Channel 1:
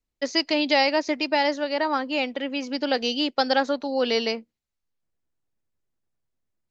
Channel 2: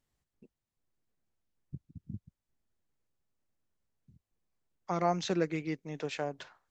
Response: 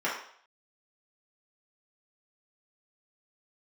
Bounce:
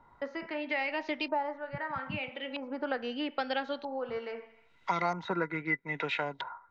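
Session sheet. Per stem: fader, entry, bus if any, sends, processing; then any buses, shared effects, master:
-11.5 dB, 0.00 s, send -24 dB, auto duck -11 dB, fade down 0.35 s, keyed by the second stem
-2.5 dB, 0.00 s, no send, treble shelf 4.3 kHz +11.5 dB; small resonant body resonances 970/1400/2000/3800 Hz, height 17 dB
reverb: on, RT60 0.60 s, pre-delay 3 ms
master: LFO low-pass saw up 0.78 Hz 940–3800 Hz; three bands compressed up and down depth 70%

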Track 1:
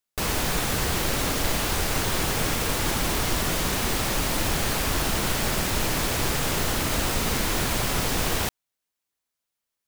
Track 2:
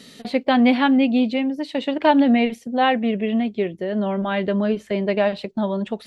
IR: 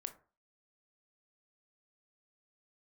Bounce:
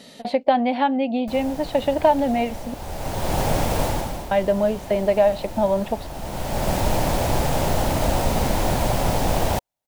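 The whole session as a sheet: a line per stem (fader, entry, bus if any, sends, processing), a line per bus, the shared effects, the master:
-3.5 dB, 1.10 s, no send, bass shelf 480 Hz +10 dB; auto duck -14 dB, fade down 0.45 s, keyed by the second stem
-1.0 dB, 0.00 s, muted 2.74–4.31 s, no send, compression 6:1, threshold -20 dBFS, peak gain reduction 10 dB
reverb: none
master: high-order bell 710 Hz +10 dB 1 oct

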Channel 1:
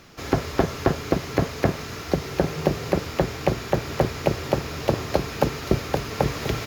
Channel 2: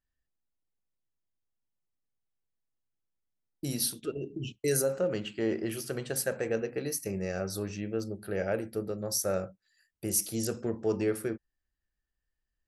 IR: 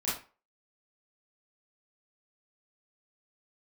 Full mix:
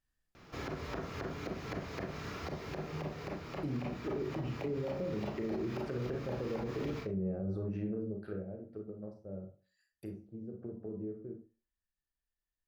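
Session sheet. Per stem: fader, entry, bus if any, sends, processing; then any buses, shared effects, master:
-9.5 dB, 0.35 s, send -8 dB, peaking EQ 12 kHz -12 dB 1.9 oct; compression, threshold -25 dBFS, peak gain reduction 10.5 dB; auto duck -9 dB, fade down 1.15 s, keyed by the second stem
7.88 s -1.5 dB -> 8.53 s -12.5 dB, 0.00 s, send -6 dB, low-pass that closes with the level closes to 340 Hz, closed at -29 dBFS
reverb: on, RT60 0.35 s, pre-delay 27 ms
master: peak limiter -28.5 dBFS, peak gain reduction 10 dB

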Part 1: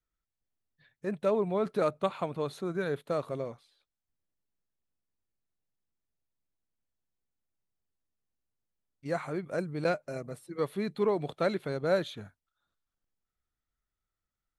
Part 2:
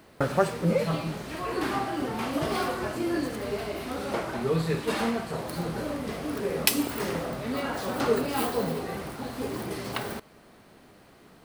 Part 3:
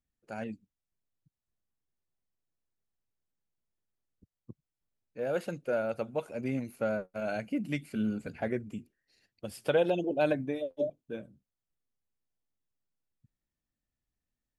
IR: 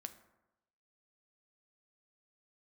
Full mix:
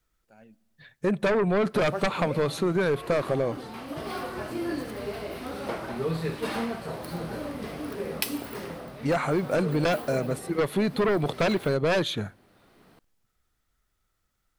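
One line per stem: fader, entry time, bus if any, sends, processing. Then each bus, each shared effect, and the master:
-1.5 dB, 0.00 s, send -16 dB, sine folder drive 10 dB, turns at -15 dBFS
-2.5 dB, 1.55 s, no send, peaking EQ 7.1 kHz -5.5 dB 0.47 oct; auto duck -6 dB, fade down 1.25 s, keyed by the first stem
-18.0 dB, 0.00 s, send -6.5 dB, none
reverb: on, RT60 0.95 s, pre-delay 5 ms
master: compression, threshold -21 dBFS, peak gain reduction 4 dB

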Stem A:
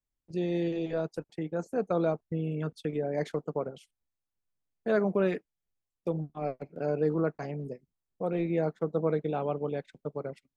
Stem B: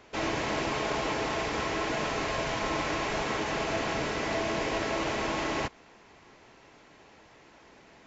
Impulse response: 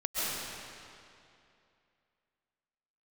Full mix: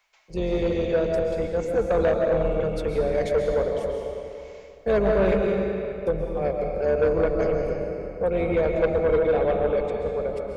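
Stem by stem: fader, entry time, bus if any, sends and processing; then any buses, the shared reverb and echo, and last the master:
-3.5 dB, 0.00 s, send -5.5 dB, octave divider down 2 oct, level +3 dB; graphic EQ 125/250/500 Hz -7/-11/+12 dB
-16.0 dB, 0.00 s, no send, high-pass 690 Hz 24 dB/octave; compression 2.5:1, threshold -45 dBFS, peak gain reduction 10.5 dB; auto duck -13 dB, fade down 0.25 s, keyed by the first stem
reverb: on, RT60 2.6 s, pre-delay 95 ms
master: small resonant body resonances 200/2200 Hz, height 13 dB, ringing for 45 ms; saturation -14.5 dBFS, distortion -16 dB; treble shelf 2.4 kHz +9 dB

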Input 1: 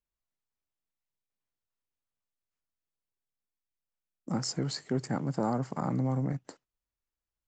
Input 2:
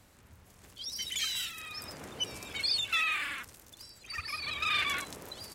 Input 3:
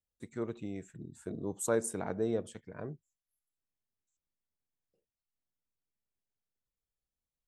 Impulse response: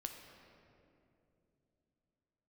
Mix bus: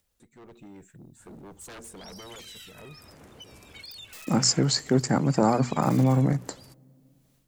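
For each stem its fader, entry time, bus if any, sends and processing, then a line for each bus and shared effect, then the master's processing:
-0.5 dB, 0.00 s, no bus, send -23.5 dB, treble shelf 7.4 kHz +11 dB; hum notches 60/120/180/240 Hz
-16.5 dB, 1.20 s, bus A, no send, tilt EQ -1.5 dB/octave; integer overflow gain 25 dB; treble shelf 8 kHz +5.5 dB
-9.0 dB, 0.00 s, bus A, no send, wavefolder -32.5 dBFS; valve stage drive 41 dB, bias 0.2
bus A: 0.0 dB, upward compressor, threshold -56 dBFS; peak limiter -44 dBFS, peak gain reduction 8 dB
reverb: on, RT60 2.8 s, pre-delay 8 ms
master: level rider gain up to 9 dB

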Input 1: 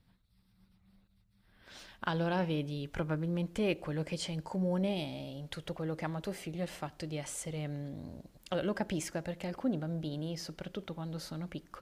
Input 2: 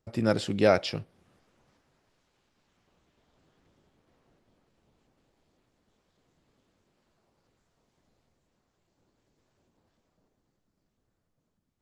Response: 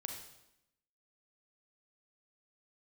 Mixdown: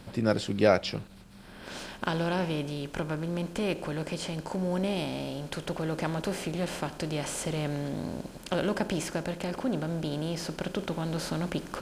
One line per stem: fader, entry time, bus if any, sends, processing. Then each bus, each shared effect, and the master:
+0.5 dB, 0.00 s, no send, spectral levelling over time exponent 0.6; gain riding 2 s
-0.5 dB, 0.00 s, no send, none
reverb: none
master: none

